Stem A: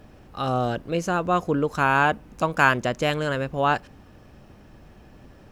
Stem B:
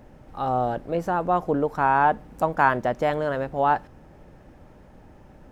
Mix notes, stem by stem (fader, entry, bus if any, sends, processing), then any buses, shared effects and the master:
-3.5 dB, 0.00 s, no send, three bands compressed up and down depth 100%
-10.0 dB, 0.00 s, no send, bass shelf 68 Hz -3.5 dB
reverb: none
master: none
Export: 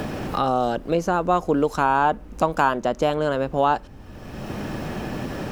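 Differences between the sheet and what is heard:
stem B -10.0 dB -> -3.0 dB; master: extra bass shelf 72 Hz +7.5 dB

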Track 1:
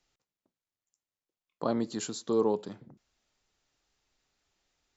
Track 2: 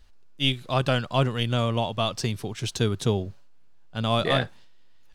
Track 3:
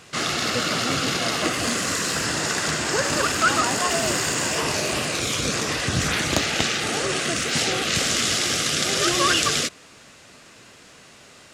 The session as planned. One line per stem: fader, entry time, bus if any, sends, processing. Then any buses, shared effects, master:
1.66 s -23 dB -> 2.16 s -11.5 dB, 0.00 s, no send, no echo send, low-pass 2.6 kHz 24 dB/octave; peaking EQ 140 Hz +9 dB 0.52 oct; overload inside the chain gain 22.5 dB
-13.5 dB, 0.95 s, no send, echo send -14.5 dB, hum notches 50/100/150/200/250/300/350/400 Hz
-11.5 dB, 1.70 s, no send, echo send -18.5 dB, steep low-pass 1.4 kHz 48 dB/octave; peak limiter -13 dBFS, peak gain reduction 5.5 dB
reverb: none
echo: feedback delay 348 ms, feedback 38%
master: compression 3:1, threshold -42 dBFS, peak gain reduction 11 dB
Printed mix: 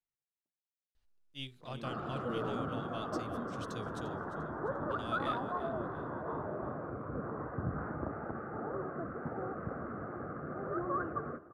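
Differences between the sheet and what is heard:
stem 2 -13.5 dB -> -20.0 dB; master: missing compression 3:1, threshold -42 dBFS, peak gain reduction 11 dB

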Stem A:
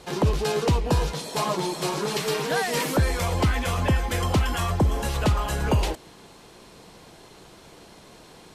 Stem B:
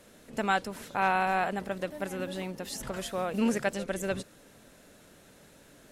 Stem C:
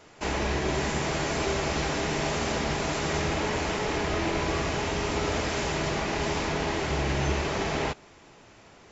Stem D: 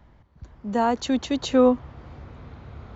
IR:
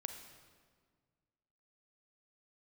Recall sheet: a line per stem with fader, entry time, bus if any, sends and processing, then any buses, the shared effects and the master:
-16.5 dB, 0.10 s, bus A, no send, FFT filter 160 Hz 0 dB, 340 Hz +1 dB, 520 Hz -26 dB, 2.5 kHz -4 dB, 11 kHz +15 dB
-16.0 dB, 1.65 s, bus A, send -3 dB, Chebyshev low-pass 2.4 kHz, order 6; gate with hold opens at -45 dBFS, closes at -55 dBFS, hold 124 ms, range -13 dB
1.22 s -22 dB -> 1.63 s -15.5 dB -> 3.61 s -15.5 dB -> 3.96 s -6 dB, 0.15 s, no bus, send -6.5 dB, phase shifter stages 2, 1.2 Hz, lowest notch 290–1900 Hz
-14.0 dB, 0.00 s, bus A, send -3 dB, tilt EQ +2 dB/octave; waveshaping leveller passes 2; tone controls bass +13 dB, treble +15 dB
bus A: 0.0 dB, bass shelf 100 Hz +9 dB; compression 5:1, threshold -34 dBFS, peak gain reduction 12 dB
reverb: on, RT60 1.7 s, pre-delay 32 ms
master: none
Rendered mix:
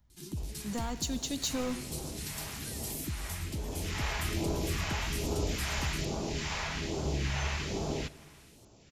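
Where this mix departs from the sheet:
stem B: muted; stem D -14.0 dB -> -22.0 dB

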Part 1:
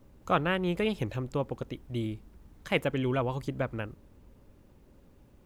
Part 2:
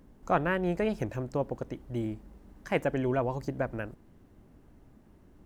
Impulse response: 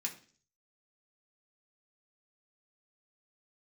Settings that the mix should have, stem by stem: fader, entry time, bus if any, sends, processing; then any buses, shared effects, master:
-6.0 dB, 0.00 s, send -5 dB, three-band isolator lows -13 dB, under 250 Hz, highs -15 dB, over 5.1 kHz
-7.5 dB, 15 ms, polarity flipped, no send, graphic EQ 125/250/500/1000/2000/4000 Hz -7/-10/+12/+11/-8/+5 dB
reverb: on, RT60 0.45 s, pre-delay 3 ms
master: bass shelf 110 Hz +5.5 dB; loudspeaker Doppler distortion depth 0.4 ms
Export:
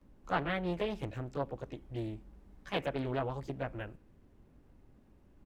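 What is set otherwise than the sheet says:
stem 1 -6.0 dB -> -12.5 dB; stem 2: missing graphic EQ 125/250/500/1000/2000/4000 Hz -7/-10/+12/+11/-8/+5 dB

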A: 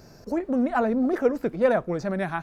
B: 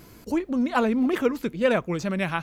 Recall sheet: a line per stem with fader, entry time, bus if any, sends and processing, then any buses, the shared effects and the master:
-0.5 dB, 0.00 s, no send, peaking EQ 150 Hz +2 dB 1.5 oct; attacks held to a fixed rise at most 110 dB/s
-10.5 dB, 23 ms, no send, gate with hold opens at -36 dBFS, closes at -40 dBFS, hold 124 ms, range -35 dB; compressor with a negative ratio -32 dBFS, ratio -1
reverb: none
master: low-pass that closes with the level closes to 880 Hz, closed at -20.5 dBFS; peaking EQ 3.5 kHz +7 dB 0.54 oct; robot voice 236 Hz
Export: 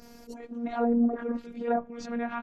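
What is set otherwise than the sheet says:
stem B: missing gate with hold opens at -36 dBFS, closes at -40 dBFS, hold 124 ms, range -35 dB; master: missing peaking EQ 3.5 kHz +7 dB 0.54 oct

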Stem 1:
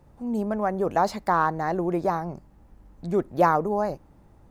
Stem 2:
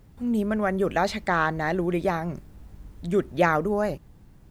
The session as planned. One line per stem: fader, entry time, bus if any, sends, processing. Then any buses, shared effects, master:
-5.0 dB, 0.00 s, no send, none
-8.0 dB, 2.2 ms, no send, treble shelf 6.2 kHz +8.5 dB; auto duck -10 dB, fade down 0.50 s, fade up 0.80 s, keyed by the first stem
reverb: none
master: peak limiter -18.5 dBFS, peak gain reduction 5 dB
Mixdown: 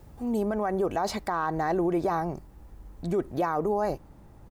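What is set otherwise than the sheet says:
stem 1 -5.0 dB -> +2.5 dB; stem 2 -8.0 dB -> -0.5 dB

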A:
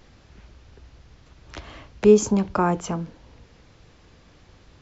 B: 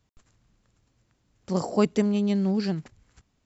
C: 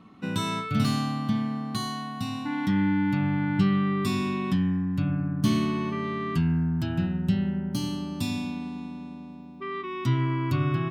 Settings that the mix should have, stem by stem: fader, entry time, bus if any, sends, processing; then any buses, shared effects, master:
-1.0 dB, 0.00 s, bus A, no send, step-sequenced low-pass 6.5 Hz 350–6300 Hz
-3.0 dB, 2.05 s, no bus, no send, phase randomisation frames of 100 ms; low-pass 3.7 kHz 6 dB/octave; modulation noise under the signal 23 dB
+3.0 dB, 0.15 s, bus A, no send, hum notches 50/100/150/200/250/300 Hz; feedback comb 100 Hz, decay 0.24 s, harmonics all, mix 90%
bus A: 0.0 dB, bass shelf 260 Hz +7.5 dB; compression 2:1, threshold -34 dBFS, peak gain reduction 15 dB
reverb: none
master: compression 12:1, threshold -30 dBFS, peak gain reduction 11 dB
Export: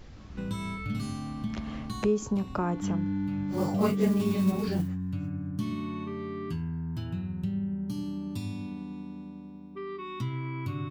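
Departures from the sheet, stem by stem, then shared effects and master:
stem A: missing step-sequenced low-pass 6.5 Hz 350–6300 Hz; master: missing compression 12:1, threshold -30 dBFS, peak gain reduction 11 dB

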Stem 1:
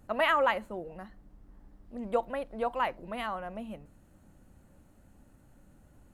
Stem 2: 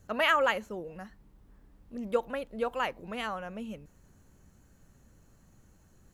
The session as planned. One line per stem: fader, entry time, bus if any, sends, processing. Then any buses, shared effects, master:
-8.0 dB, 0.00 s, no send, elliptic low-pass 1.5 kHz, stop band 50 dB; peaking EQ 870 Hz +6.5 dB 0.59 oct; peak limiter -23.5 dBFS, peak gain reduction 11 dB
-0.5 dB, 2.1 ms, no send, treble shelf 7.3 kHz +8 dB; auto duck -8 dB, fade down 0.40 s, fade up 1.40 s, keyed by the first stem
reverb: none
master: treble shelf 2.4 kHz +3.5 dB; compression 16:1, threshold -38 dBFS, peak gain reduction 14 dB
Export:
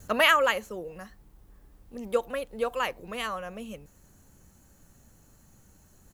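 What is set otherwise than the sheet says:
stem 2 -0.5 dB -> +9.0 dB; master: missing compression 16:1, threshold -38 dBFS, peak gain reduction 14 dB

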